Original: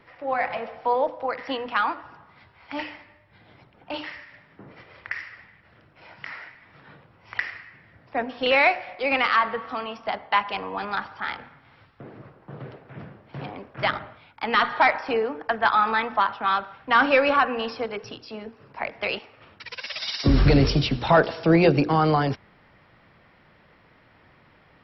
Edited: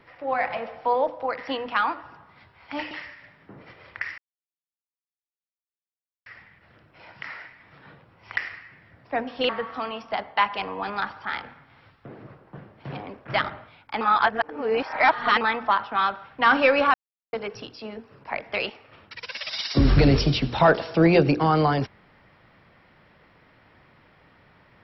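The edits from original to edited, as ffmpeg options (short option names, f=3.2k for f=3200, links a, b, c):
-filter_complex "[0:a]asplit=9[a][b][c][d][e][f][g][h][i];[a]atrim=end=2.912[j];[b]atrim=start=4.008:end=5.28,asetpts=PTS-STARTPTS,afade=t=out:st=1.268:d=0.004:c=hsin,apad=pad_dur=2.08[k];[c]atrim=start=5.28:end=8.512,asetpts=PTS-STARTPTS,afade=t=in:d=0.004:c=hsin[l];[d]atrim=start=9.438:end=12.532[m];[e]atrim=start=13.068:end=14.502[n];[f]atrim=start=14.498:end=15.902,asetpts=PTS-STARTPTS,areverse[o];[g]atrim=start=15.898:end=17.43,asetpts=PTS-STARTPTS,afade=t=out:st=1.528:d=0.004:c=hsin[p];[h]atrim=start=17.43:end=17.82,asetpts=PTS-STARTPTS,volume=0[q];[i]atrim=start=17.82,asetpts=PTS-STARTPTS,afade=t=in:d=0.004:c=hsin[r];[k][l]concat=n=2:v=0:a=1[s];[j][s]acrossfade=d=0.004:c1=hsin:c2=hsin[t];[t][m]acrossfade=d=0.004:c1=hsin:c2=hsin[u];[u][n]acrossfade=d=0.004:c1=hsin:c2=hsin[v];[v][o]acrossfade=d=0.004:c1=hsin:c2=hsin[w];[p][q][r]concat=n=3:v=0:a=1[x];[w][x]acrossfade=d=0.004:c1=hsin:c2=hsin"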